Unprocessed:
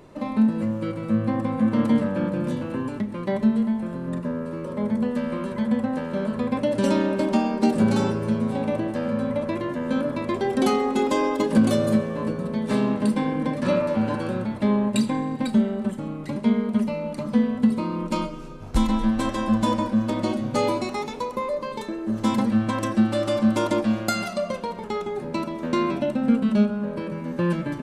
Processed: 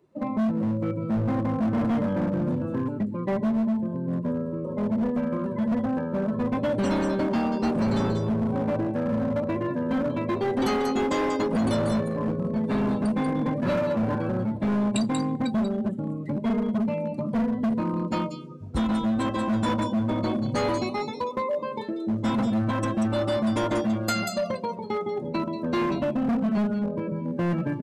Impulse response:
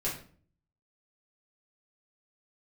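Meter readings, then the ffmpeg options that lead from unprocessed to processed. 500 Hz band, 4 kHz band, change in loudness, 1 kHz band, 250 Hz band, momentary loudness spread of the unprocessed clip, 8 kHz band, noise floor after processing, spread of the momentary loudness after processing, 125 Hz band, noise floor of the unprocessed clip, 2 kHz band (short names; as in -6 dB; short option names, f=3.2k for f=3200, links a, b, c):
-2.0 dB, -2.5 dB, -2.0 dB, -2.0 dB, -2.5 dB, 8 LU, -3.0 dB, -34 dBFS, 5 LU, 0.0 dB, -35 dBFS, -2.0 dB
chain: -filter_complex "[0:a]highpass=f=50:w=0.5412,highpass=f=50:w=1.3066,afftdn=nr=20:nf=-34,adynamicequalizer=threshold=0.0158:dfrequency=110:dqfactor=1.1:tfrequency=110:tqfactor=1.1:attack=5:release=100:ratio=0.375:range=2:mode=boostabove:tftype=bell,acrossover=split=3200[a][b];[a]asoftclip=type=hard:threshold=-21.5dB[c];[b]aecho=1:1:188:0.708[d];[c][d]amix=inputs=2:normalize=0"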